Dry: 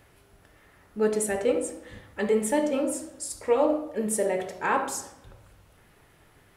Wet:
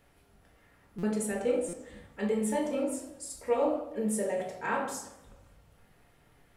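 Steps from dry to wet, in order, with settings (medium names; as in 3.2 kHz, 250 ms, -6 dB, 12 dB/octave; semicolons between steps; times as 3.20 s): simulated room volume 340 m³, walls furnished, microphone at 1.7 m; buffer glitch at 0.98/1.68 s, samples 256, times 8; modulated delay 83 ms, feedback 57%, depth 200 cents, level -19.5 dB; trim -8.5 dB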